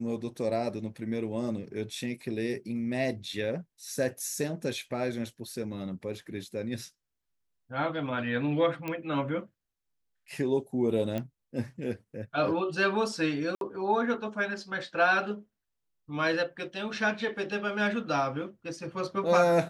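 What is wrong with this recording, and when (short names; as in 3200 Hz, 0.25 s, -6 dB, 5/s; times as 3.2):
8.88 pop -20 dBFS
11.18 pop -20 dBFS
13.55–13.61 gap 62 ms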